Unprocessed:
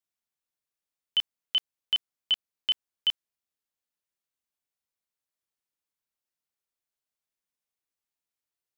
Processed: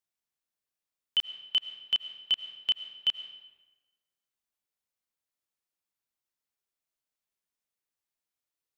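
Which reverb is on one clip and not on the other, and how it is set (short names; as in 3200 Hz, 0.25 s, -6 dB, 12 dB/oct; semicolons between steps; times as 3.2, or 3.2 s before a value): digital reverb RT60 1.2 s, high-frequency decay 0.75×, pre-delay 60 ms, DRR 10.5 dB; gain -1 dB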